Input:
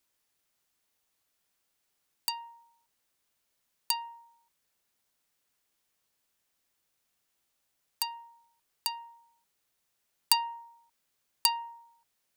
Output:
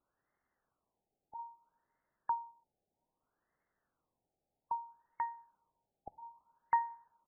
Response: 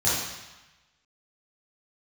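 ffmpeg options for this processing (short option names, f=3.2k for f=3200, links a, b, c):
-filter_complex "[0:a]atempo=1.7,asplit=2[a][b];[1:a]atrim=start_sample=2205[c];[b][c]afir=irnorm=-1:irlink=0,volume=-34.5dB[d];[a][d]amix=inputs=2:normalize=0,afftfilt=real='re*lt(b*sr/1024,840*pow(2200/840,0.5+0.5*sin(2*PI*0.62*pts/sr)))':imag='im*lt(b*sr/1024,840*pow(2200/840,0.5+0.5*sin(2*PI*0.62*pts/sr)))':win_size=1024:overlap=0.75,volume=3.5dB"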